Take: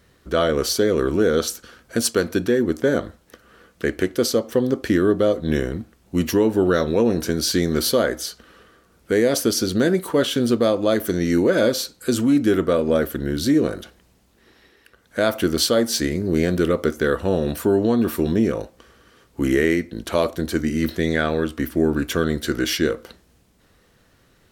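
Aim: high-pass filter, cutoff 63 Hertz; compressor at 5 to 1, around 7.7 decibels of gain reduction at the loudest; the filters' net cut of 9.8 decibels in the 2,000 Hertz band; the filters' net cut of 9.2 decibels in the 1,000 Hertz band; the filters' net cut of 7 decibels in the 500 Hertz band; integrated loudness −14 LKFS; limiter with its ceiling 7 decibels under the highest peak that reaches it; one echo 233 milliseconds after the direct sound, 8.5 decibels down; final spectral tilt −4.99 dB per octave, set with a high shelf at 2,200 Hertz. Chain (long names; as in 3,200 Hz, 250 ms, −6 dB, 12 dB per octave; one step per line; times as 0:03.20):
high-pass filter 63 Hz
parametric band 500 Hz −7 dB
parametric band 1,000 Hz −7 dB
parametric band 2,000 Hz −8 dB
high-shelf EQ 2,200 Hz −3.5 dB
downward compressor 5 to 1, threshold −25 dBFS
brickwall limiter −20.5 dBFS
single-tap delay 233 ms −8.5 dB
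level +17.5 dB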